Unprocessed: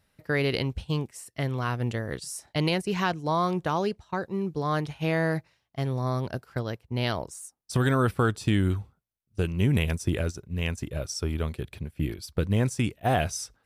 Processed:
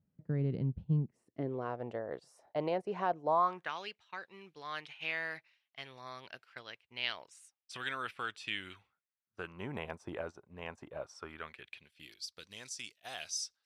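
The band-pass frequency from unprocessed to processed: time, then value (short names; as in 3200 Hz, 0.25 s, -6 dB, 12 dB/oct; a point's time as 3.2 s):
band-pass, Q 2
1.03 s 170 Hz
1.8 s 650 Hz
3.29 s 650 Hz
3.75 s 2600 Hz
8.76 s 2600 Hz
9.75 s 890 Hz
11.04 s 890 Hz
12.12 s 4900 Hz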